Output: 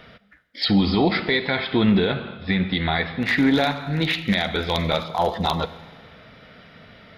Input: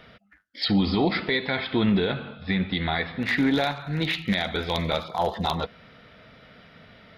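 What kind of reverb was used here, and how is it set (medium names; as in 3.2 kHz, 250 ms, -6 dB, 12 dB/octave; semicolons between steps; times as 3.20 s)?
Schroeder reverb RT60 1.6 s, combs from 33 ms, DRR 15.5 dB; trim +3.5 dB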